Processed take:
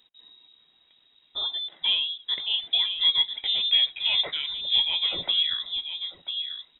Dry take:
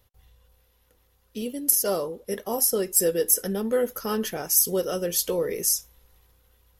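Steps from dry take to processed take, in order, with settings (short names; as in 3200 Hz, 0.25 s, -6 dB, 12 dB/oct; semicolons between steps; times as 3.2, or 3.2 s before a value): outdoor echo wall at 170 m, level -7 dB; inverted band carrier 3800 Hz; gain +1.5 dB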